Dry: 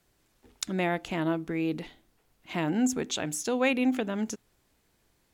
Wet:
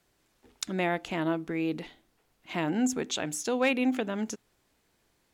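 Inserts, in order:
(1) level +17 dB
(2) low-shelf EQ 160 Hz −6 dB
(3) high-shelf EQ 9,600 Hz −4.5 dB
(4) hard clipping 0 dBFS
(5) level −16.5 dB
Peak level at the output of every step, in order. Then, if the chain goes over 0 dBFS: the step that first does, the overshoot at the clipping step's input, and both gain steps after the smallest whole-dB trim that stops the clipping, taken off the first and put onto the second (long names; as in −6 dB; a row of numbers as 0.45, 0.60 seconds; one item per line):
+5.5, +5.5, +4.5, 0.0, −16.5 dBFS
step 1, 4.5 dB
step 1 +12 dB, step 5 −11.5 dB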